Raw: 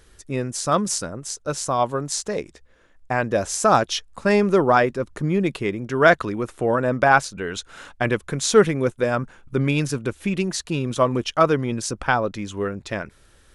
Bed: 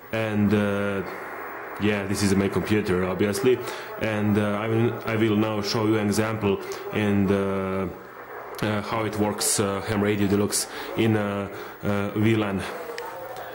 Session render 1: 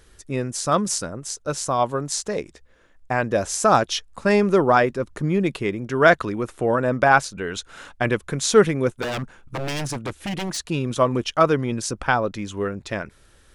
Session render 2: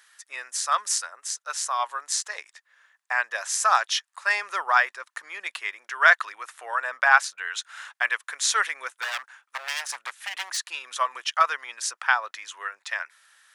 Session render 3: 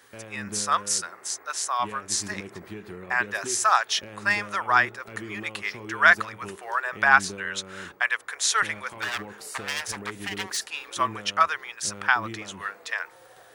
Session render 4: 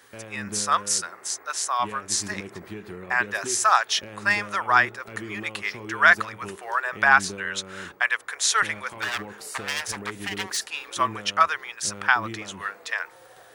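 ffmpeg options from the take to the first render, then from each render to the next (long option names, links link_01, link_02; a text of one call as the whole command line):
ffmpeg -i in.wav -filter_complex "[0:a]asplit=3[link_01][link_02][link_03];[link_01]afade=type=out:start_time=9.01:duration=0.02[link_04];[link_02]aeval=exprs='0.0841*(abs(mod(val(0)/0.0841+3,4)-2)-1)':channel_layout=same,afade=type=in:start_time=9.01:duration=0.02,afade=type=out:start_time=10.57:duration=0.02[link_05];[link_03]afade=type=in:start_time=10.57:duration=0.02[link_06];[link_04][link_05][link_06]amix=inputs=3:normalize=0" out.wav
ffmpeg -i in.wav -af "highpass=frequency=960:width=0.5412,highpass=frequency=960:width=1.3066,equalizer=frequency=1800:width=4.5:gain=6" out.wav
ffmpeg -i in.wav -i bed.wav -filter_complex "[1:a]volume=-17dB[link_01];[0:a][link_01]amix=inputs=2:normalize=0" out.wav
ffmpeg -i in.wav -af "volume=1.5dB,alimiter=limit=-3dB:level=0:latency=1" out.wav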